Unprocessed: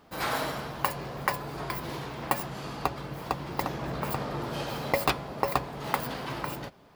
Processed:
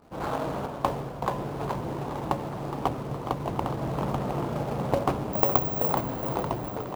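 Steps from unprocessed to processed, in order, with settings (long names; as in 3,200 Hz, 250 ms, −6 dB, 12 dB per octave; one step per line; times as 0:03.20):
running median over 25 samples
high-shelf EQ 2,500 Hz −10.5 dB
mains-hum notches 60/120/180/240/300/360/420/480/540/600 Hz
delay with pitch and tempo change per echo 273 ms, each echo −2 semitones, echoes 3, each echo −6 dB
in parallel at −8 dB: log-companded quantiser 4 bits
0:05.33–0:05.93: on the sum: bad sample-rate conversion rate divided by 2×, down filtered, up zero stuff
on a send: echo with shifted repeats 416 ms, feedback 55%, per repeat +56 Hz, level −10.5 dB
0:00.66–0:01.28: on the sum: multiband upward and downward expander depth 100%
level +1.5 dB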